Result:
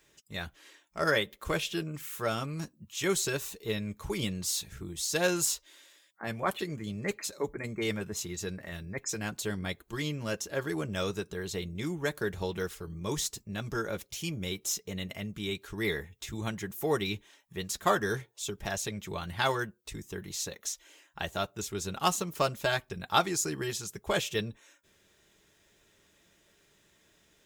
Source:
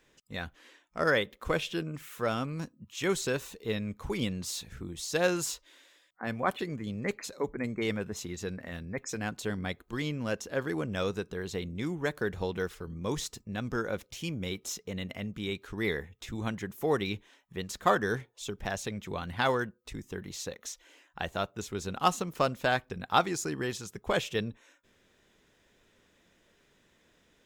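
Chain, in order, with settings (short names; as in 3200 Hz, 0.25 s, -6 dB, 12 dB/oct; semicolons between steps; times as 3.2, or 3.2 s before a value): high shelf 4700 Hz +10 dB; notch comb 250 Hz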